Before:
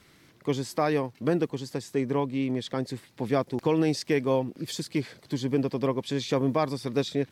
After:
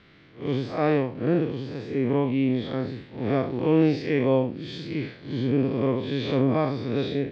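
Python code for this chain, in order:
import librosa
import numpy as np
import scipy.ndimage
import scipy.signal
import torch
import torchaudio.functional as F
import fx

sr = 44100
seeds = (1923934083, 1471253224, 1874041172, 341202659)

y = fx.spec_blur(x, sr, span_ms=129.0)
y = scipy.signal.sosfilt(scipy.signal.butter(4, 3800.0, 'lowpass', fs=sr, output='sos'), y)
y = fx.peak_eq(y, sr, hz=950.0, db=-4.5, octaves=0.42)
y = F.gain(torch.from_numpy(y), 6.0).numpy()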